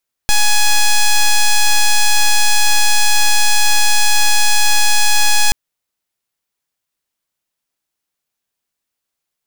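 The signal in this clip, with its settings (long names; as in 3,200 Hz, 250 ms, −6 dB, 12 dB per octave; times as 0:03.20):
pulse wave 838 Hz, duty 6% −9.5 dBFS 5.23 s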